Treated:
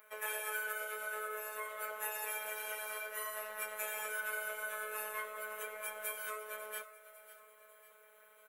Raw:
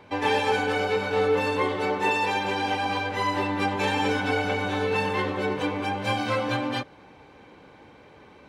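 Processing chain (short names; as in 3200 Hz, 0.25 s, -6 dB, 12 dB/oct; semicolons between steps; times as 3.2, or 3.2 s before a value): EQ curve 120 Hz 0 dB, 370 Hz -25 dB, 530 Hz +13 dB, 770 Hz -12 dB, 1300 Hz +6 dB, 4800 Hz -22 dB, 12000 Hz +13 dB; compressor 3:1, threshold -26 dBFS, peak gain reduction 9.5 dB; differentiator; robotiser 214 Hz; feedback echo 0.548 s, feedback 48%, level -14.5 dB; on a send at -20 dB: reverb RT60 0.50 s, pre-delay 3 ms; on the sum: gain +7.5 dB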